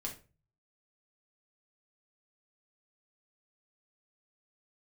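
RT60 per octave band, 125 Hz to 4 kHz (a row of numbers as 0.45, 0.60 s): 0.75, 0.45, 0.40, 0.30, 0.30, 0.25 s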